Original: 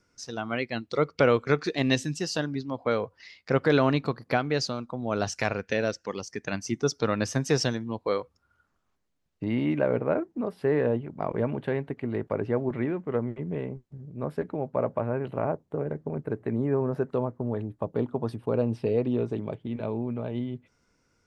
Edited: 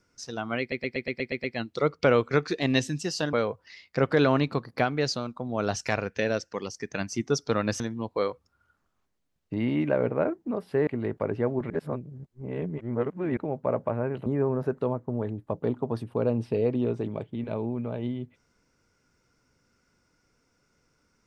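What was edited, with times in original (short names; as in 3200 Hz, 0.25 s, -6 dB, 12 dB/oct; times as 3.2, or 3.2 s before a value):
0.6 stutter 0.12 s, 8 plays
2.49–2.86 cut
7.33–7.7 cut
10.77–11.97 cut
12.8–14.47 reverse
15.36–16.58 cut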